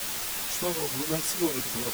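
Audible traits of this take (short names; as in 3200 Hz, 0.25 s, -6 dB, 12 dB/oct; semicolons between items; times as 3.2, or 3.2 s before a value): tremolo triangle 6.4 Hz, depth 95%; a quantiser's noise floor 6-bit, dither triangular; a shimmering, thickened sound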